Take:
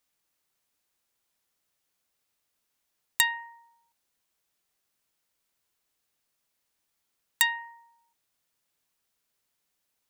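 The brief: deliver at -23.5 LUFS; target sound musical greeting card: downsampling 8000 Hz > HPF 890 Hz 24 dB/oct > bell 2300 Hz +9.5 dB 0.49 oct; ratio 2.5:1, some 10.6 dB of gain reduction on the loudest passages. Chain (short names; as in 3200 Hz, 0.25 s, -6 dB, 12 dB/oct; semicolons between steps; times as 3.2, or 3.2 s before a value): compressor 2.5:1, threshold -36 dBFS; downsampling 8000 Hz; HPF 890 Hz 24 dB/oct; bell 2300 Hz +9.5 dB 0.49 oct; gain +14 dB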